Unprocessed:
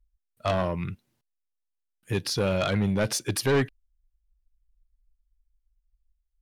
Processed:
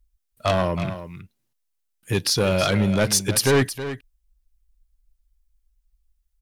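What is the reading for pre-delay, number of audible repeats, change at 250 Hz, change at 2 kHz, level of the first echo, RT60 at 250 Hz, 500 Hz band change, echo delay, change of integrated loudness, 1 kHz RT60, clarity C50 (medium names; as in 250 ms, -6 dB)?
no reverb, 1, +5.0 dB, +6.0 dB, -12.0 dB, no reverb, +5.0 dB, 320 ms, +5.5 dB, no reverb, no reverb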